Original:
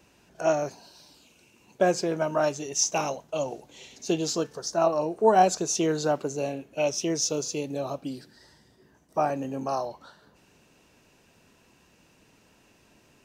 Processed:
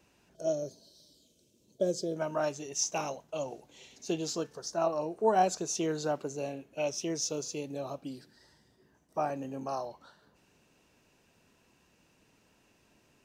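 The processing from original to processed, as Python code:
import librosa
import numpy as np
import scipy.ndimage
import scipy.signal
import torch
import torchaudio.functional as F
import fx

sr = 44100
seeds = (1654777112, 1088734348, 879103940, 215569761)

y = fx.spec_box(x, sr, start_s=0.35, length_s=1.81, low_hz=670.0, high_hz=3000.0, gain_db=-18)
y = y * librosa.db_to_amplitude(-6.5)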